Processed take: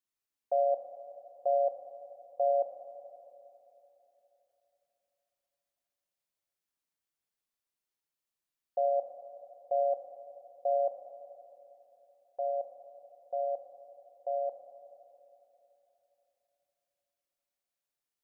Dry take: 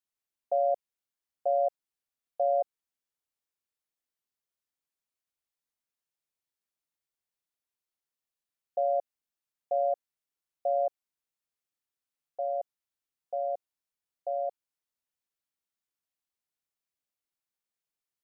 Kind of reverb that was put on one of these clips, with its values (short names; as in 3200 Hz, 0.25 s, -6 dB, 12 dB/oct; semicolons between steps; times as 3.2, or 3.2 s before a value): Schroeder reverb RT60 3.4 s, combs from 28 ms, DRR 3.5 dB; gain -1.5 dB